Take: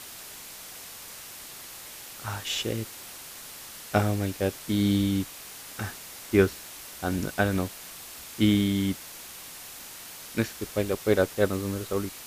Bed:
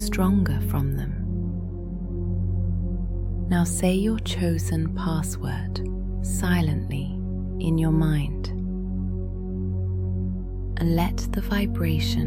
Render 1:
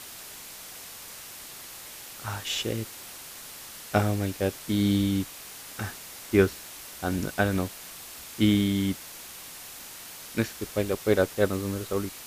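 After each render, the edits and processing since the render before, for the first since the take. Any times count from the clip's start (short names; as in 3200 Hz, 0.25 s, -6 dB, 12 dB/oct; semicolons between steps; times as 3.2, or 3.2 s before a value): nothing audible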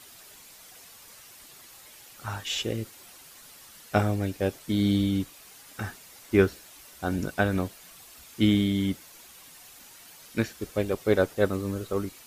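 denoiser 9 dB, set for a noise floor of -43 dBFS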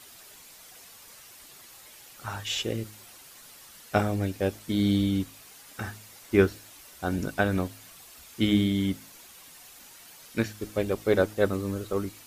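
de-hum 53.02 Hz, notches 6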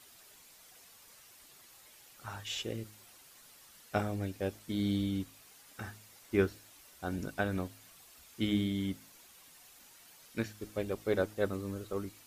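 gain -8 dB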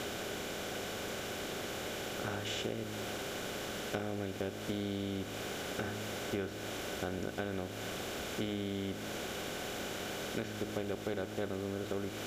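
per-bin compression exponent 0.4; compressor 6:1, threshold -34 dBFS, peak gain reduction 13 dB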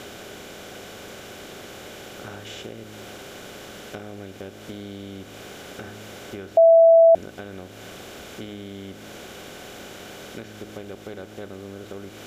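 6.57–7.15 bleep 661 Hz -9 dBFS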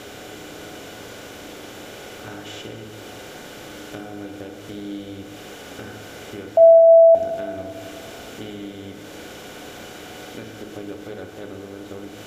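thin delay 0.283 s, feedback 36%, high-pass 4900 Hz, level -17 dB; FDN reverb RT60 2.4 s, low-frequency decay 0.75×, high-frequency decay 0.5×, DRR 2.5 dB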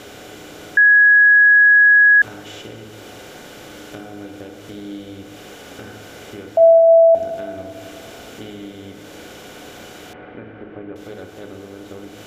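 0.77–2.22 bleep 1670 Hz -7 dBFS; 10.13–10.96 LPF 2200 Hz 24 dB/oct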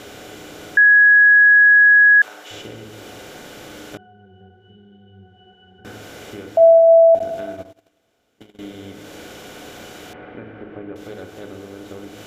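0.84–2.51 HPF 580 Hz; 3.97–5.85 octave resonator F#, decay 0.2 s; 7.19–8.59 gate -32 dBFS, range -30 dB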